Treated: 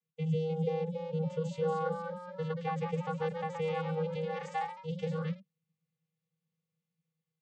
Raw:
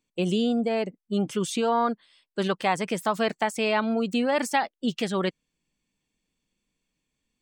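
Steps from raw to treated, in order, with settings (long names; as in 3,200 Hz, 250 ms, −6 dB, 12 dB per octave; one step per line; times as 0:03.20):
channel vocoder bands 16, square 159 Hz
delay with pitch and tempo change per echo 315 ms, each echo +1 semitone, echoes 3, each echo −6 dB
level −8.5 dB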